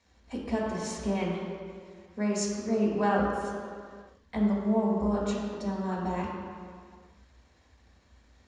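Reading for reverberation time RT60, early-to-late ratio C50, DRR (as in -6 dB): no single decay rate, 0.5 dB, -5.0 dB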